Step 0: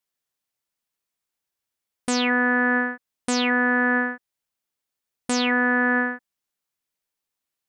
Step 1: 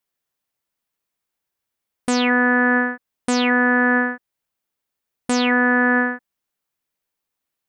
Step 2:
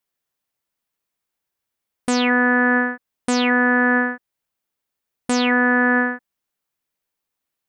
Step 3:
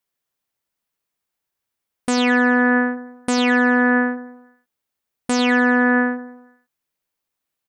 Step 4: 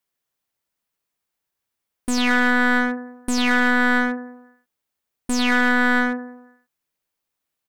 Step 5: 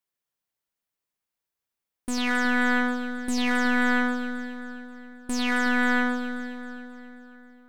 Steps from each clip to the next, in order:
peaking EQ 6.5 kHz -4.5 dB 2.5 oct; trim +4.5 dB
no audible change
feedback delay 97 ms, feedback 50%, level -14 dB
one-sided wavefolder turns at -21.5 dBFS
two-band feedback delay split 1.5 kHz, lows 368 ms, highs 267 ms, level -9 dB; trim -6.5 dB

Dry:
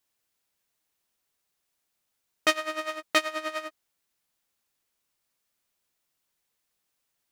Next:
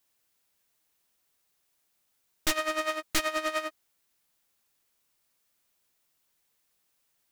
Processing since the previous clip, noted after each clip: treble shelf 11 kHz +3.5 dB; wavefolder -20.5 dBFS; trim +3 dB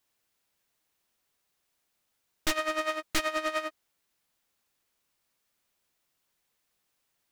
treble shelf 6.1 kHz -5.5 dB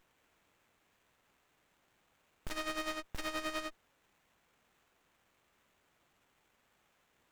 hard clipper -28.5 dBFS, distortion -7 dB; peak limiter -38 dBFS, peak gain reduction 9.5 dB; sliding maximum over 9 samples; trim +8 dB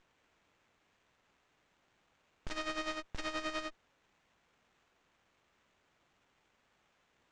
low-pass 7 kHz 24 dB/octave

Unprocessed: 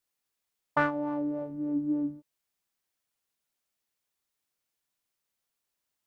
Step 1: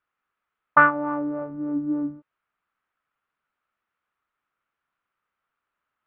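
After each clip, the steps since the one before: low-pass 2.8 kHz 24 dB/octave; peaking EQ 1.3 kHz +14 dB 0.7 oct; trim +3 dB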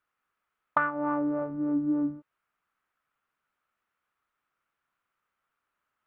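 compression 16:1, threshold -22 dBFS, peak gain reduction 13 dB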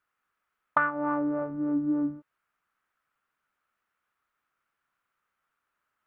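peaking EQ 1.6 kHz +2.5 dB 0.77 oct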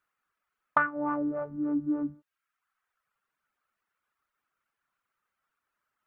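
reverb removal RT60 0.87 s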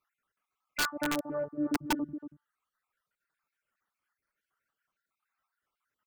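random holes in the spectrogram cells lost 45%; echo from a far wall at 40 m, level -10 dB; integer overflow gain 22.5 dB

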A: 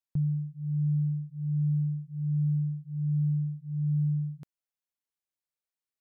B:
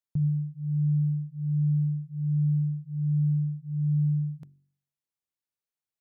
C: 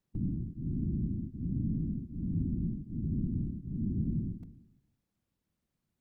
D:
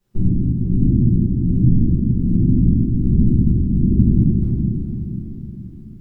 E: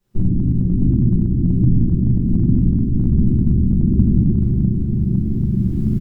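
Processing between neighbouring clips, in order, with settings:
peaking EQ 120 Hz +6 dB 2.8 oct; de-hum 47.2 Hz, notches 8; trim -3 dB
spectral levelling over time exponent 0.6; whisper effect; trim -8 dB
echo that smears into a reverb 458 ms, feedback 48%, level -6.5 dB; reverberation RT60 1.2 s, pre-delay 5 ms, DRR -10 dB; trim +5 dB
recorder AGC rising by 16 dB/s; delay 390 ms -9 dB; trim -1 dB

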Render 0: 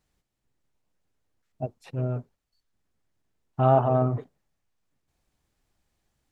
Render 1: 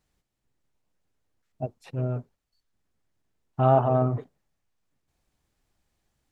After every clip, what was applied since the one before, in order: no audible change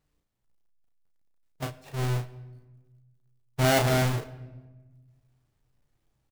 square wave that keeps the level; doubling 34 ms -5 dB; simulated room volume 940 m³, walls mixed, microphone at 0.34 m; trim -6.5 dB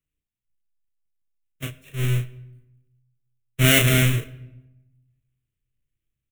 resonant high shelf 2.1 kHz +6.5 dB, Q 1.5; static phaser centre 2 kHz, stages 4; three bands expanded up and down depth 40%; trim +4.5 dB

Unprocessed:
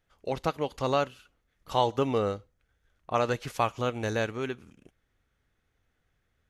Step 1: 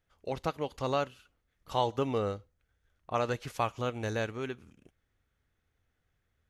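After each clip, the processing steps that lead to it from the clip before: peaking EQ 84 Hz +4 dB 0.77 oct; trim -4 dB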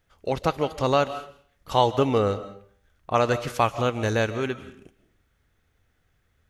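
reverberation RT60 0.50 s, pre-delay 110 ms, DRR 13.5 dB; trim +9 dB

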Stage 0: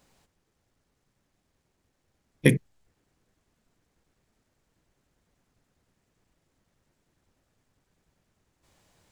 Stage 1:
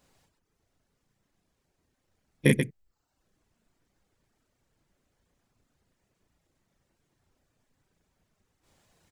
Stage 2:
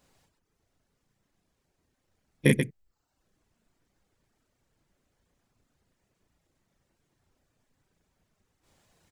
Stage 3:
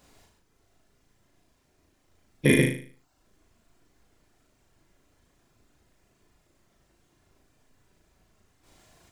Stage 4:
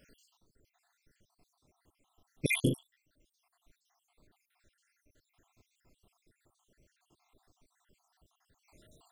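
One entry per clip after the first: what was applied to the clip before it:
loudspeakers at several distances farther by 12 m -1 dB, 46 m -4 dB; reverb removal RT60 0.6 s; trim -3.5 dB
no audible change
on a send: flutter echo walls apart 6.5 m, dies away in 0.45 s; on the sum: loudness maximiser +13.5 dB; trim -6.5 dB
random holes in the spectrogram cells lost 70%

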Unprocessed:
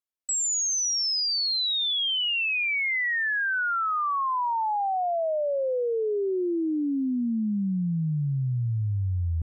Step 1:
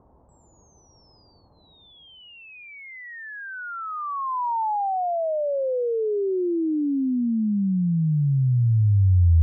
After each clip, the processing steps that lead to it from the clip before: elliptic low-pass 950 Hz, stop band 80 dB; peaking EQ 66 Hz +13 dB 2.2 oct; reverse; upward compressor, threshold -21 dBFS; reverse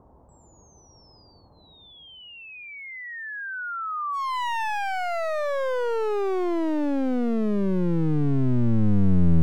one-sided wavefolder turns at -26 dBFS; dynamic bell 780 Hz, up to -4 dB, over -43 dBFS, Q 1.7; trim +2.5 dB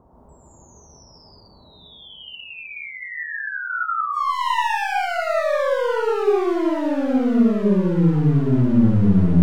gated-style reverb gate 200 ms rising, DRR -4.5 dB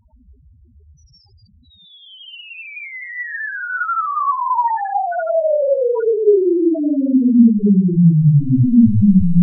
loudest bins only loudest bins 2; trim +7.5 dB

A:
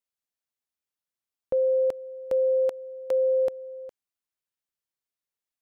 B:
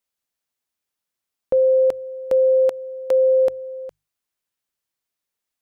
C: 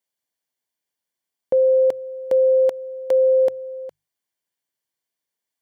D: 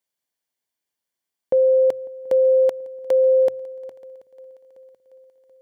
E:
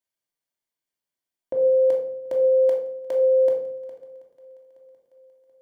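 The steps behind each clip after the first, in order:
hum notches 50/100/150 Hz; trim +7 dB
comb of notches 1.3 kHz
shuffle delay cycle 732 ms, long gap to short 3:1, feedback 49%, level -23 dB
simulated room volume 900 m³, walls furnished, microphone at 2.8 m; trim -7.5 dB

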